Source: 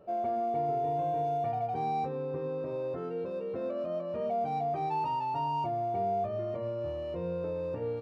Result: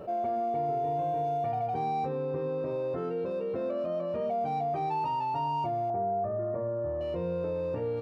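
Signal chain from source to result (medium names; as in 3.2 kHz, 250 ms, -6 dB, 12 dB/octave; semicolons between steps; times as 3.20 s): 5.90–7.01 s: Chebyshev low-pass 1.7 kHz, order 4; level flattener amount 50%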